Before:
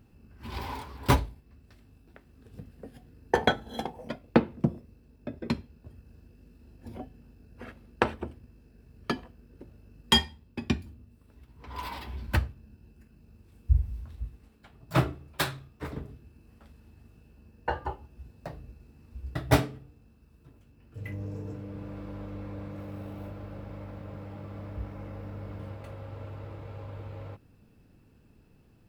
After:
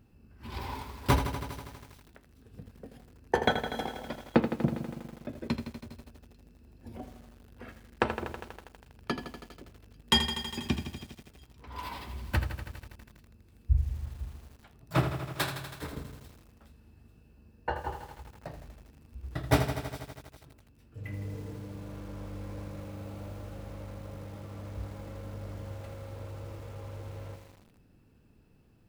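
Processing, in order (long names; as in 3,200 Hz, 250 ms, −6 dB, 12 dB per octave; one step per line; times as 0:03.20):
delay with a high-pass on its return 422 ms, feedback 32%, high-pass 4,100 Hz, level −16 dB
feedback echo at a low word length 81 ms, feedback 80%, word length 8 bits, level −9 dB
level −2.5 dB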